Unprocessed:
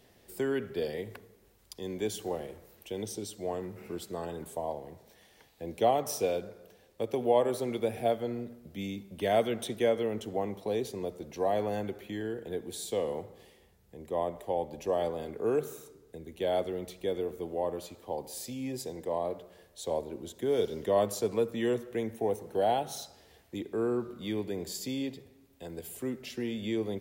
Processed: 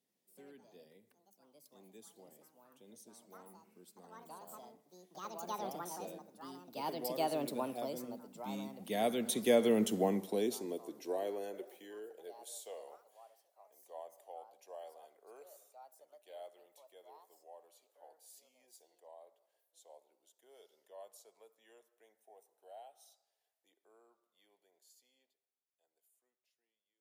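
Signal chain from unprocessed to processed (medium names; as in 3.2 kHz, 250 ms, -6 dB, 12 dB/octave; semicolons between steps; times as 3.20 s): fade out at the end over 3.35 s; Doppler pass-by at 9.84 s, 12 m/s, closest 3.9 m; peaking EQ 11 kHz +12.5 dB 2.1 oct; ever faster or slower copies 87 ms, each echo +5 st, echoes 2, each echo -6 dB; high-pass sweep 200 Hz -> 680 Hz, 10.01–12.89 s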